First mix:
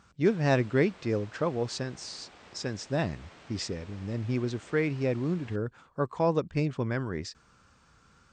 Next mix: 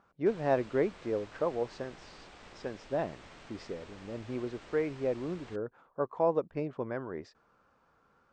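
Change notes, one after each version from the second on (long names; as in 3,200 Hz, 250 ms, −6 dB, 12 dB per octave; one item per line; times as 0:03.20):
speech: add resonant band-pass 630 Hz, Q 1
master: remove high-pass filter 70 Hz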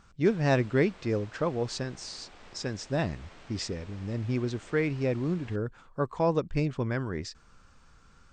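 speech: remove resonant band-pass 630 Hz, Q 1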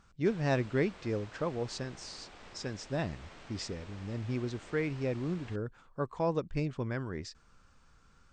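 speech −5.0 dB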